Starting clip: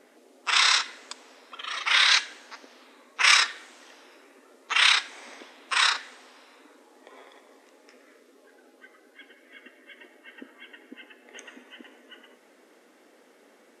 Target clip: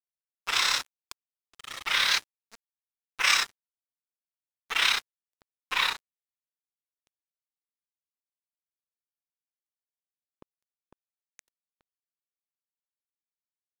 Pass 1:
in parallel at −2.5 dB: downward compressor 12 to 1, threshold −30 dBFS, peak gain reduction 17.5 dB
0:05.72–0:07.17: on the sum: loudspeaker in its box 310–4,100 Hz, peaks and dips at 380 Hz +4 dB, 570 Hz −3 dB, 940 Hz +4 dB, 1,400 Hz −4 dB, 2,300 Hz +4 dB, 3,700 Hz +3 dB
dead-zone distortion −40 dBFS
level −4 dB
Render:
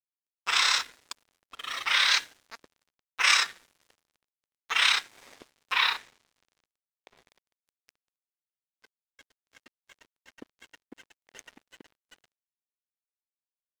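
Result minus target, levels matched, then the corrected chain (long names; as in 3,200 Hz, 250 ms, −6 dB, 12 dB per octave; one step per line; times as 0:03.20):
dead-zone distortion: distortion −7 dB
in parallel at −2.5 dB: downward compressor 12 to 1, threshold −30 dBFS, peak gain reduction 17.5 dB
0:05.72–0:07.17: on the sum: loudspeaker in its box 310–4,100 Hz, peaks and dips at 380 Hz +4 dB, 570 Hz −3 dB, 940 Hz +4 dB, 1,400 Hz −4 dB, 2,300 Hz +4 dB, 3,700 Hz +3 dB
dead-zone distortion −29 dBFS
level −4 dB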